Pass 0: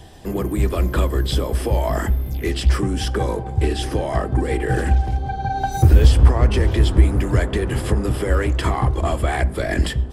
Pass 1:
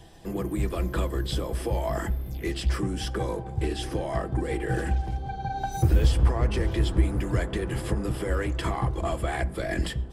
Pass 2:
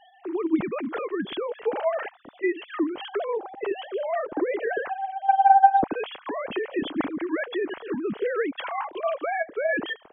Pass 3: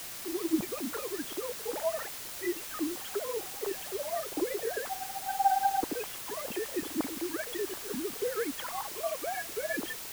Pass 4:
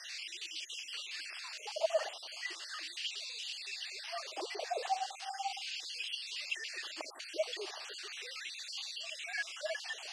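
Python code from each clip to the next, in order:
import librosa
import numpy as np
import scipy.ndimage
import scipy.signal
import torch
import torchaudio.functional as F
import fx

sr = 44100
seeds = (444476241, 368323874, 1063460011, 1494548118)

y1 = x + 0.31 * np.pad(x, (int(6.0 * sr / 1000.0), 0))[:len(x)]
y1 = F.gain(torch.from_numpy(y1), -7.5).numpy()
y2 = fx.sine_speech(y1, sr)
y3 = fx.phaser_stages(y2, sr, stages=6, low_hz=170.0, high_hz=3000.0, hz=3.9, feedback_pct=5)
y3 = fx.quant_dither(y3, sr, seeds[0], bits=6, dither='triangular')
y3 = F.gain(torch.from_numpy(y3), -5.5).numpy()
y4 = fx.spec_dropout(y3, sr, seeds[1], share_pct=42)
y4 = fx.filter_lfo_highpass(y4, sr, shape='sine', hz=0.37, low_hz=740.0, high_hz=3100.0, q=2.1)
y4 = fx.cabinet(y4, sr, low_hz=310.0, low_slope=24, high_hz=7300.0, hz=(360.0, 620.0, 980.0, 1400.0, 2800.0, 4600.0), db=(4, 8, -6, -5, 9, 9))
y4 = F.gain(torch.from_numpy(y4), -2.5).numpy()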